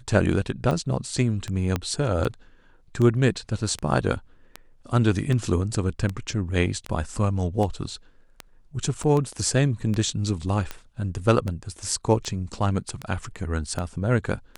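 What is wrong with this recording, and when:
tick 78 rpm -16 dBFS
1.76 s: pop -11 dBFS
9.03–9.04 s: dropout 6.4 ms

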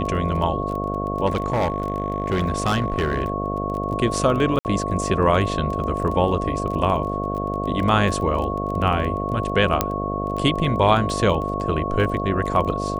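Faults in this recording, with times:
buzz 50 Hz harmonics 14 -27 dBFS
crackle 17 per s -28 dBFS
whine 1.1 kHz -27 dBFS
1.26–3.30 s: clipped -16.5 dBFS
4.59–4.65 s: dropout 59 ms
9.81 s: pop -3 dBFS

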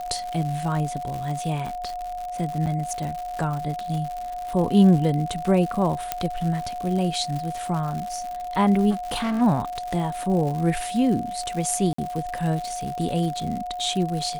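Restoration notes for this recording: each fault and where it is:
crackle 140 per s -29 dBFS
whine 720 Hz -29 dBFS
2.66–2.67 s: dropout 7.2 ms
6.12 s: pop -7 dBFS
8.90–9.42 s: clipped -22.5 dBFS
11.93–11.98 s: dropout 54 ms

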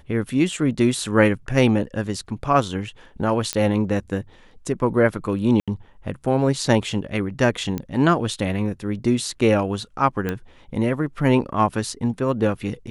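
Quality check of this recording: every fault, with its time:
3.53 s: pop -7 dBFS
5.60–5.68 s: dropout 76 ms
7.78 s: pop -14 dBFS
10.29 s: pop -12 dBFS

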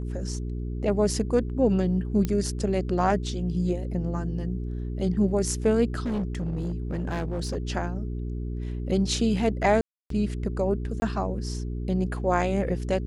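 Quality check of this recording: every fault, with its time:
hum 60 Hz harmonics 7 -31 dBFS
2.25 s: pop -14 dBFS
6.00–7.57 s: clipped -24.5 dBFS
9.81–10.10 s: dropout 293 ms
11.00–11.02 s: dropout 20 ms

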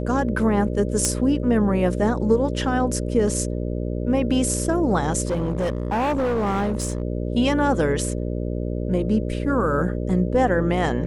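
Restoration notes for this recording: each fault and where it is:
buzz 60 Hz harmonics 10 -26 dBFS
1.05 s: pop -7 dBFS
5.25–7.02 s: clipped -19 dBFS

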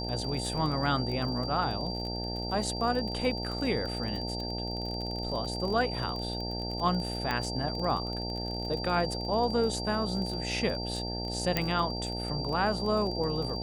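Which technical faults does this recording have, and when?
buzz 60 Hz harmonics 15 -36 dBFS
crackle 32 per s -35 dBFS
whine 4.7 kHz -37 dBFS
7.31 s: pop -16 dBFS
11.57 s: pop -11 dBFS

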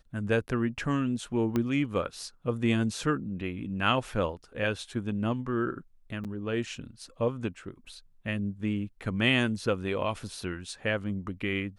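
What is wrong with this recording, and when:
1.56 s: pop -16 dBFS
6.24–6.25 s: dropout 7.6 ms

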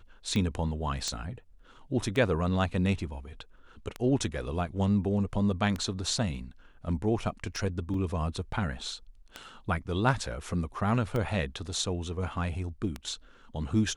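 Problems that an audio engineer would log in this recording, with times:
tick 33 1/3 rpm -19 dBFS
1.08 s: pop -18 dBFS
7.94 s: dropout 2.2 ms

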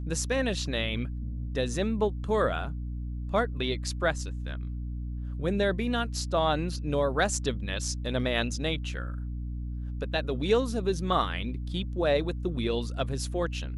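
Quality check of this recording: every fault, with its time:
hum 60 Hz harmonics 5 -34 dBFS

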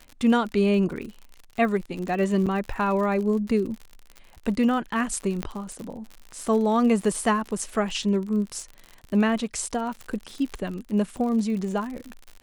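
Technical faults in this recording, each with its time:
crackle 63 per s -32 dBFS
2.46–2.47 s: dropout 6.9 ms
5.43 s: pop -14 dBFS

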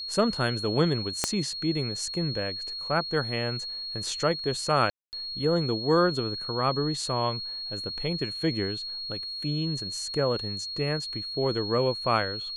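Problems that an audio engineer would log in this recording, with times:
whine 4.3 kHz -33 dBFS
1.24 s: pop -8 dBFS
4.90–5.13 s: dropout 229 ms

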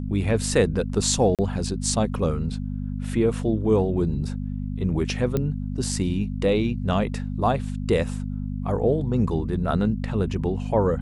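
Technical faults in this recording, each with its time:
hum 50 Hz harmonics 5 -29 dBFS
1.35–1.39 s: dropout 37 ms
5.37 s: pop -12 dBFS

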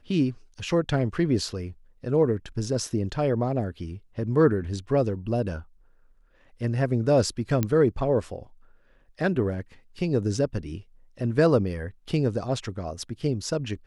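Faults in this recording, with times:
7.63 s: pop -11 dBFS

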